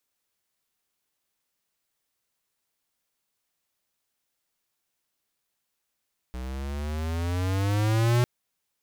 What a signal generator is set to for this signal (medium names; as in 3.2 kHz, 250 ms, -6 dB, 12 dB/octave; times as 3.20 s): gliding synth tone square, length 1.90 s, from 61.7 Hz, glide +12 st, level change +14 dB, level -20.5 dB